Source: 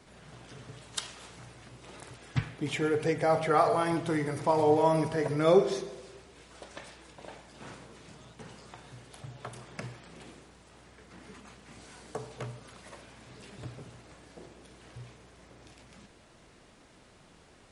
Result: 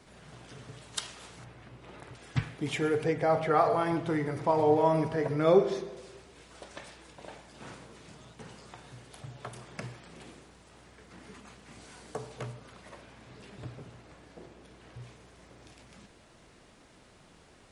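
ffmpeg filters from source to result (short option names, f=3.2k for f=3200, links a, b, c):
-filter_complex "[0:a]asettb=1/sr,asplit=3[a][b][c];[a]atrim=end=1.444[d];[b]atrim=start=1.44:end=2.15,asetpts=PTS-STARTPTS,afade=t=in:d=0.004:c=qsin,afade=t=out:st=0.706:d=0.004:c=qsin,bass=f=250:g=1,treble=f=4k:g=-12[e];[c]atrim=start=2.146[f];[d][e]acrossfade=d=0.004:c1=hsin:c2=qsin[g];[g][f]acrossfade=d=0.004:c1=qsin:c2=hsin,asettb=1/sr,asplit=3[h][i][j];[h]atrim=end=3.034[k];[i]atrim=start=3.03:end=5.97,asetpts=PTS-STARTPTS,afade=t=in:d=0.004:c=qsin,afade=t=out:st=2.936:d=0.004:c=qsin,lowpass=f=3k:p=1[l];[j]atrim=start=5.966[m];[k][l]acrossfade=d=0.004:c1=hsin:c2=qsin[n];[n][m]acrossfade=d=0.004:c1=qsin:c2=hsin,asettb=1/sr,asplit=3[o][p][q];[o]atrim=end=12.534[r];[p]atrim=start=12.53:end=15.02,asetpts=PTS-STARTPTS,afade=t=in:d=0.004:c=qsin,afade=t=out:st=2.486:d=0.004:c=qsin,highshelf=f=5.1k:g=-7.5[s];[q]atrim=start=15.016[t];[r][s]acrossfade=d=0.004:c1=hsin:c2=qsin[u];[u][t]acrossfade=d=0.004:c1=qsin:c2=hsin"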